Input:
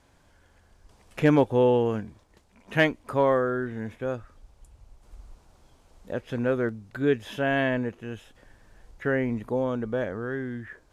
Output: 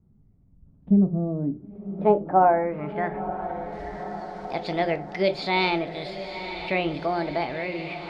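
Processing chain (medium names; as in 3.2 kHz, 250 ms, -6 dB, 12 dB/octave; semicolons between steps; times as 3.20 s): vibrato 2 Hz 10 cents; low-pass sweep 140 Hz -> 3.3 kHz, 1.54–5.13 s; echo that smears into a reverb 1307 ms, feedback 61%, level -12 dB; on a send at -10 dB: reverberation RT60 0.40 s, pre-delay 6 ms; on the sum: speed mistake 33 rpm record played at 45 rpm; tape noise reduction on one side only encoder only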